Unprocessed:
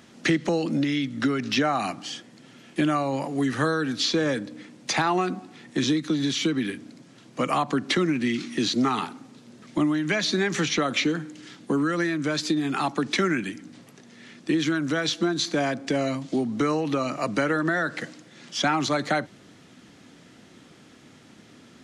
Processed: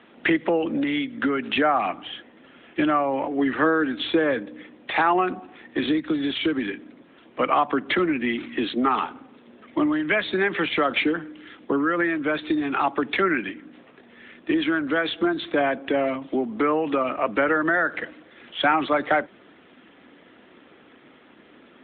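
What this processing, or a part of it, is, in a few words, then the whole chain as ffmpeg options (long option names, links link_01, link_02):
telephone: -filter_complex "[0:a]asplit=3[link_01][link_02][link_03];[link_01]afade=type=out:start_time=3.15:duration=0.02[link_04];[link_02]equalizer=frequency=320:width=4:gain=5,afade=type=in:start_time=3.15:duration=0.02,afade=type=out:start_time=4.15:duration=0.02[link_05];[link_03]afade=type=in:start_time=4.15:duration=0.02[link_06];[link_04][link_05][link_06]amix=inputs=3:normalize=0,highpass=340,lowpass=3400,volume=5dB" -ar 8000 -c:a libopencore_amrnb -b:a 12200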